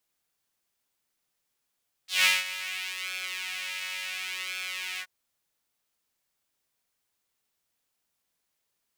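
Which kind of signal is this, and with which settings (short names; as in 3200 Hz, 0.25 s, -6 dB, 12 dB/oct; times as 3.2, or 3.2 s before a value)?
synth patch with pulse-width modulation F#3, detune 8 cents, filter highpass, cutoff 1500 Hz, Q 2.6, filter envelope 1.5 oct, filter decay 0.11 s, filter sustain 45%, attack 0.165 s, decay 0.19 s, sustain -15 dB, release 0.06 s, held 2.92 s, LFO 0.7 Hz, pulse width 36%, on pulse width 17%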